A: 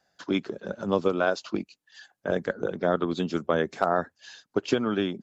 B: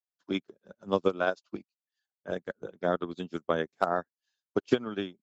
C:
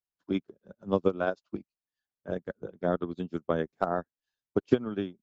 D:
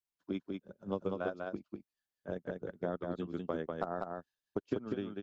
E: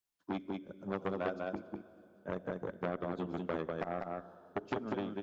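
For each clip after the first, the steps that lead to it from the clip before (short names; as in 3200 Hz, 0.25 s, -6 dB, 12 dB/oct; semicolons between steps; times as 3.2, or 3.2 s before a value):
high shelf 4400 Hz +5 dB; upward expander 2.5:1, over -45 dBFS; gain +1 dB
tilt -2.5 dB/oct; gain -2.5 dB
compressor 2.5:1, threshold -32 dBFS, peak gain reduction 11 dB; echo 0.196 s -3.5 dB; gain -3 dB
plate-style reverb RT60 2.8 s, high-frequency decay 0.95×, DRR 16 dB; core saturation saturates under 1400 Hz; gain +3 dB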